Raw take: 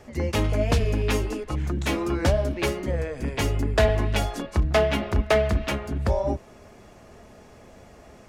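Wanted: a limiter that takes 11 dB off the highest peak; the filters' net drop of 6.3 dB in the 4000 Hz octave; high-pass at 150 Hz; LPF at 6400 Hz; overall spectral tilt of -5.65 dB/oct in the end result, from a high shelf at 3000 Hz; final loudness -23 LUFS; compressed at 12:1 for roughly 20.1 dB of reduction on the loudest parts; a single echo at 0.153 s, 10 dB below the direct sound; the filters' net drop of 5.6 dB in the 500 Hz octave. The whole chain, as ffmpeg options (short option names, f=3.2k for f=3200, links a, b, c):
-af "highpass=150,lowpass=6.4k,equalizer=f=500:t=o:g=-7.5,highshelf=f=3k:g=-6,equalizer=f=4k:t=o:g=-3.5,acompressor=threshold=-41dB:ratio=12,alimiter=level_in=13.5dB:limit=-24dB:level=0:latency=1,volume=-13.5dB,aecho=1:1:153:0.316,volume=24.5dB"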